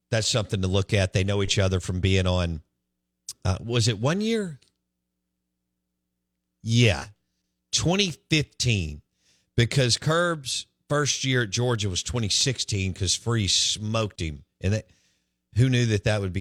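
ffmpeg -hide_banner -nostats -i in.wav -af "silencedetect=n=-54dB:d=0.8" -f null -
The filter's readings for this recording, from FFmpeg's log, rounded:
silence_start: 4.68
silence_end: 6.64 | silence_duration: 1.96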